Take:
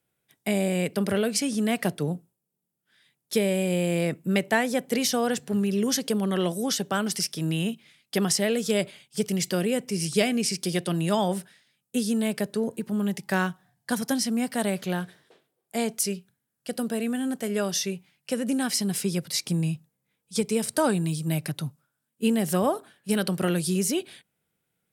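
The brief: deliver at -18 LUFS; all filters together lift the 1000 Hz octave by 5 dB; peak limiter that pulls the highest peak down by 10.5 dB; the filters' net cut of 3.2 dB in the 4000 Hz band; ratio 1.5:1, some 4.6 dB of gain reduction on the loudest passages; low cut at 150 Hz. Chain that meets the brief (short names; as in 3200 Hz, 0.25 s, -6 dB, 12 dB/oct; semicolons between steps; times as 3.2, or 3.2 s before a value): HPF 150 Hz; bell 1000 Hz +7 dB; bell 4000 Hz -5 dB; compressor 1.5:1, threshold -28 dBFS; gain +13.5 dB; limiter -7.5 dBFS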